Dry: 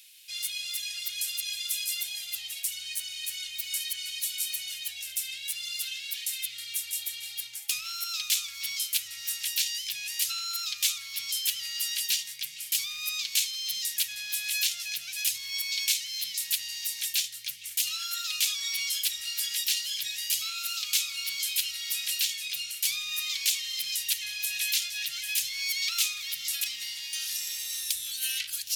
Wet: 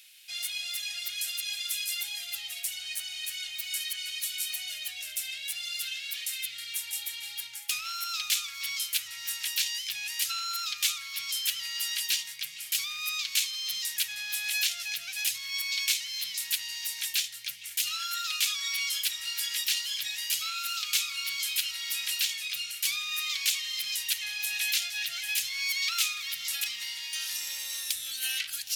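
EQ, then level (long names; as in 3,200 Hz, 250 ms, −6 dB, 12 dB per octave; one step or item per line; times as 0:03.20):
parametric band 850 Hz +12 dB 2.4 octaves
−2.5 dB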